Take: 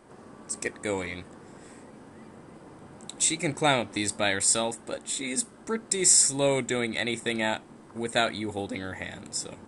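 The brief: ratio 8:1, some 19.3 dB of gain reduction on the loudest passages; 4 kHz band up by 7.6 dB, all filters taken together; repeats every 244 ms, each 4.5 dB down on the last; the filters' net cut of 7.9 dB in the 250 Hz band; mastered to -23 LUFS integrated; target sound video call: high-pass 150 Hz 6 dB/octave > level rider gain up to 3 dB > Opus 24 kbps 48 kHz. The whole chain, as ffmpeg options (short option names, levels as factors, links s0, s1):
-af "equalizer=f=250:t=o:g=-9,equalizer=f=4000:t=o:g=9,acompressor=threshold=0.02:ratio=8,highpass=f=150:p=1,aecho=1:1:244|488|732|976|1220|1464|1708|1952|2196:0.596|0.357|0.214|0.129|0.0772|0.0463|0.0278|0.0167|0.01,dynaudnorm=m=1.41,volume=4.47" -ar 48000 -c:a libopus -b:a 24k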